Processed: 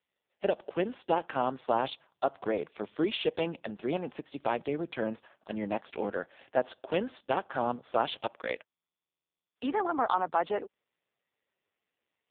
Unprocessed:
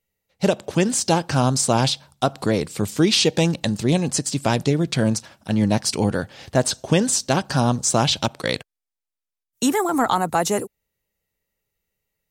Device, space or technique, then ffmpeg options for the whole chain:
telephone: -af "highpass=380,lowpass=3.2k,volume=-6dB" -ar 8000 -c:a libopencore_amrnb -b:a 5150

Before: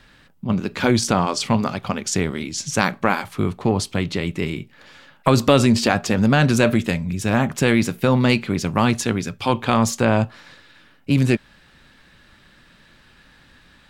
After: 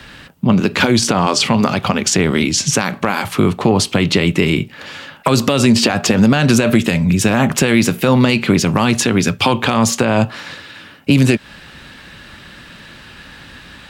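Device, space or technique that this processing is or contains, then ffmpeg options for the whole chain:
mastering chain: -filter_complex "[0:a]highpass=41,equalizer=f=2.8k:t=o:w=0.28:g=3.5,acrossover=split=120|3800[a][b][c];[a]acompressor=threshold=-39dB:ratio=4[d];[b]acompressor=threshold=-18dB:ratio=4[e];[c]acompressor=threshold=-30dB:ratio=4[f];[d][e][f]amix=inputs=3:normalize=0,acompressor=threshold=-24dB:ratio=2,asoftclip=type=hard:threshold=-10.5dB,alimiter=level_in=15dB:limit=-1dB:release=50:level=0:latency=1,volume=-1dB"

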